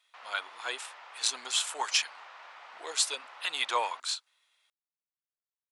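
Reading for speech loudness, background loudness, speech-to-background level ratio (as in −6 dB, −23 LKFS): −31.5 LKFS, −49.0 LKFS, 17.5 dB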